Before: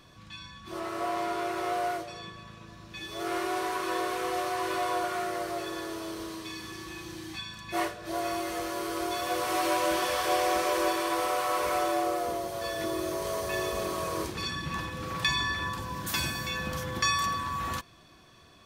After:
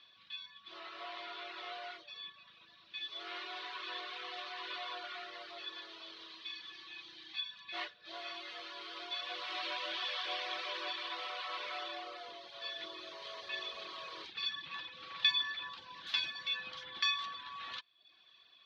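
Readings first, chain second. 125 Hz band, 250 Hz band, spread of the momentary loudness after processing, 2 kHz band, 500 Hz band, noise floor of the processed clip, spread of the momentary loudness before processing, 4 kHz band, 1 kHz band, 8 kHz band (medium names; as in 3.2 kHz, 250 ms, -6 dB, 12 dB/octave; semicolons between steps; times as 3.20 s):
under -30 dB, -24.0 dB, 13 LU, -7.5 dB, -19.5 dB, -63 dBFS, 13 LU, -1.0 dB, -15.0 dB, -23.5 dB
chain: reverb removal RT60 0.68 s; band-pass filter 3.7 kHz, Q 3; distance through air 280 m; trim +9.5 dB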